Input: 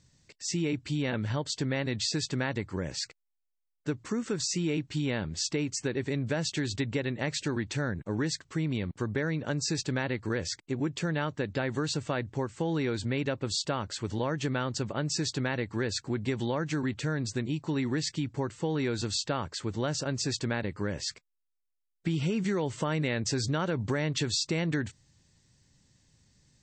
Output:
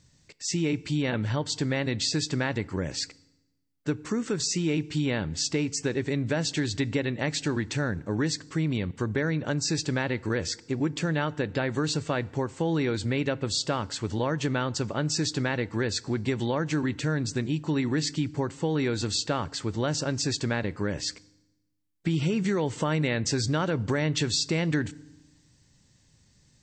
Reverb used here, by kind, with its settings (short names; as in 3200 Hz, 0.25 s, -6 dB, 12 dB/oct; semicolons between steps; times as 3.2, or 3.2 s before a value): FDN reverb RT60 0.98 s, low-frequency decay 1.3×, high-frequency decay 0.85×, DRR 19.5 dB; gain +3 dB